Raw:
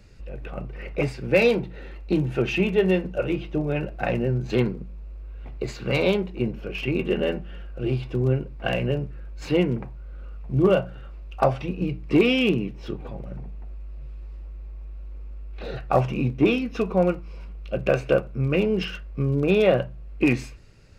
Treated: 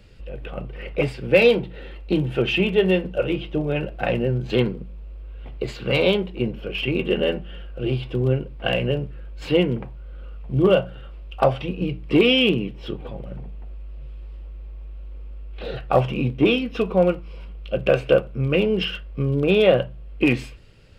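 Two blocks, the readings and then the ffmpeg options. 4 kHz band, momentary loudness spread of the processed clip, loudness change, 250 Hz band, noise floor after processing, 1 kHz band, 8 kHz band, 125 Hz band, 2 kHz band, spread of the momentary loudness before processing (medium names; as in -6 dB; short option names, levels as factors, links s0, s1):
+7.5 dB, 21 LU, +2.5 dB, +1.0 dB, -37 dBFS, +1.5 dB, no reading, +1.0 dB, +3.0 dB, 20 LU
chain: -af "equalizer=f=500:t=o:w=0.33:g=4,equalizer=f=3150:t=o:w=0.33:g=10,equalizer=f=6300:t=o:w=0.33:g=-7,volume=1.12"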